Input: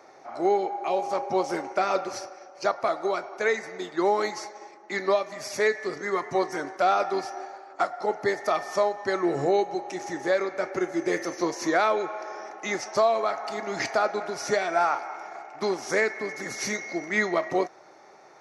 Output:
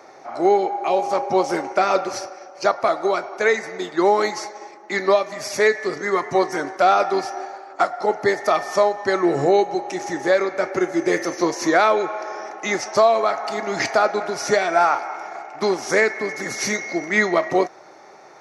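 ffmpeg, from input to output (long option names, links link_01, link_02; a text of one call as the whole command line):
ffmpeg -i in.wav -af "highpass=46,volume=6.5dB" out.wav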